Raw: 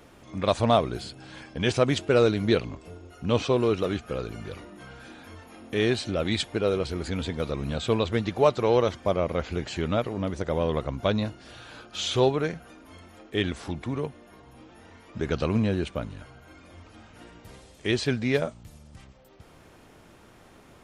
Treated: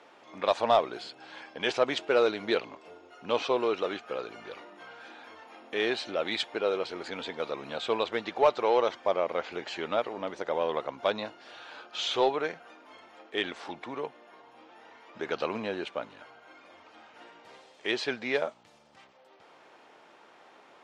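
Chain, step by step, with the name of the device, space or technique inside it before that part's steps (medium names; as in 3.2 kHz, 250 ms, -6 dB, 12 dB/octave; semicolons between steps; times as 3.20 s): intercom (band-pass 470–4500 Hz; peaking EQ 860 Hz +4 dB 0.36 oct; saturation -11 dBFS, distortion -22 dB)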